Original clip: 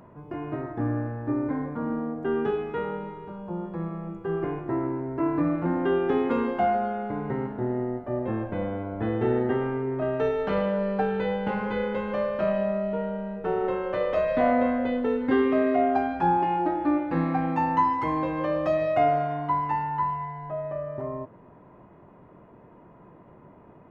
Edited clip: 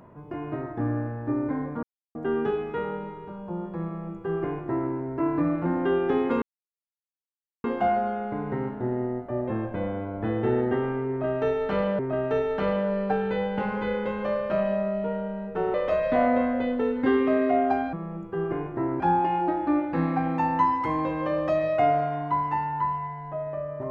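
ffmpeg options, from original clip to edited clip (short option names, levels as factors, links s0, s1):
-filter_complex "[0:a]asplit=8[s0][s1][s2][s3][s4][s5][s6][s7];[s0]atrim=end=1.83,asetpts=PTS-STARTPTS,afade=t=out:st=1.826:d=0.004:c=hsin[s8];[s1]atrim=start=1.83:end=2.15,asetpts=PTS-STARTPTS,volume=0[s9];[s2]atrim=start=2.15:end=6.42,asetpts=PTS-STARTPTS,afade=t=in:d=0.004:c=hsin,afade=t=out:st=4.266:d=0.004:c=hsin,apad=pad_dur=1.22[s10];[s3]atrim=start=6.42:end=10.772,asetpts=PTS-STARTPTS,afade=t=in:d=0.004:c=hsin[s11];[s4]atrim=start=9.878:end=13.632[s12];[s5]atrim=start=13.988:end=16.182[s13];[s6]atrim=start=3.848:end=4.922[s14];[s7]atrim=start=16.178[s15];[s8][s9][s10][s11]concat=n=4:v=0:a=1[s16];[s16][s12]acrossfade=d=0.004:c1=hsin:c2=hsin[s17];[s17][s13]acrossfade=d=0.004:c1=hsin:c2=hsin[s18];[s18][s14]acrossfade=d=0.004:c1=hsin:c2=hsin[s19];[s19][s15]acrossfade=d=0.004:c1=hsin:c2=hsin"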